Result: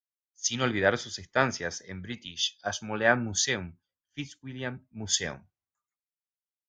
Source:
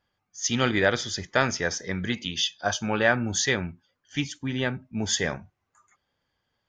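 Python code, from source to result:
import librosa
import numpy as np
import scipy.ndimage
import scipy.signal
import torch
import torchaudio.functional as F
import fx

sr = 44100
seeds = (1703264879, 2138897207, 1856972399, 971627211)

y = fx.band_widen(x, sr, depth_pct=100)
y = F.gain(torch.from_numpy(y), -6.0).numpy()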